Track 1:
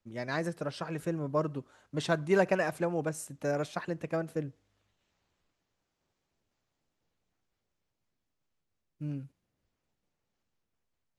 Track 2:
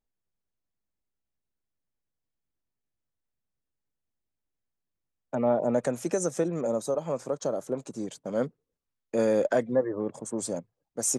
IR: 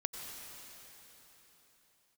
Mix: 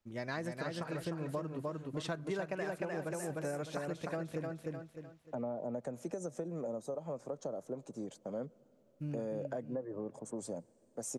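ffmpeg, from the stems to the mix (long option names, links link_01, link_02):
-filter_complex "[0:a]volume=-1.5dB,asplit=2[link_01][link_02];[link_02]volume=-4dB[link_03];[1:a]equalizer=frequency=650:width=0.8:gain=8,acrossover=split=250[link_04][link_05];[link_05]acompressor=threshold=-46dB:ratio=1.5[link_06];[link_04][link_06]amix=inputs=2:normalize=0,volume=-7.5dB,asplit=2[link_07][link_08];[link_08]volume=-23.5dB[link_09];[2:a]atrim=start_sample=2205[link_10];[link_09][link_10]afir=irnorm=-1:irlink=0[link_11];[link_03]aecho=0:1:303|606|909|1212|1515:1|0.33|0.109|0.0359|0.0119[link_12];[link_01][link_07][link_11][link_12]amix=inputs=4:normalize=0,acompressor=threshold=-35dB:ratio=6"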